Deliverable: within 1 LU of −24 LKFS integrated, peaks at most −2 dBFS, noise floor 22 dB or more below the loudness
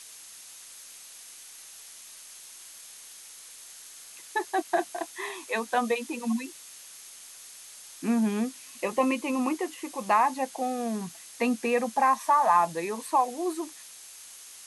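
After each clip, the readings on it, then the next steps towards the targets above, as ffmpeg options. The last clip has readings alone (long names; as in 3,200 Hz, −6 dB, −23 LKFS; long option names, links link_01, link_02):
interfering tone 6,400 Hz; level of the tone −55 dBFS; background noise floor −48 dBFS; target noise floor −50 dBFS; integrated loudness −28.0 LKFS; sample peak −11.0 dBFS; target loudness −24.0 LKFS
→ -af "bandreject=frequency=6400:width=30"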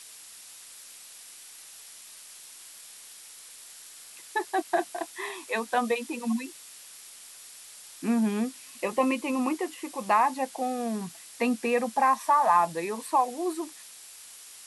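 interfering tone none found; background noise floor −48 dBFS; target noise floor −50 dBFS
→ -af "afftdn=noise_reduction=6:noise_floor=-48"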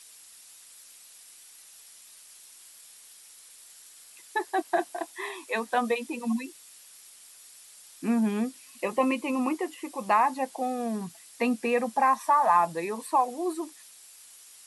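background noise floor −52 dBFS; integrated loudness −28.0 LKFS; sample peak −11.0 dBFS; target loudness −24.0 LKFS
→ -af "volume=4dB"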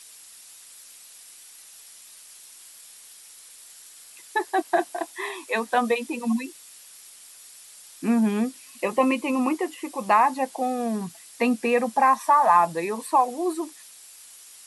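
integrated loudness −24.0 LKFS; sample peak −7.0 dBFS; background noise floor −48 dBFS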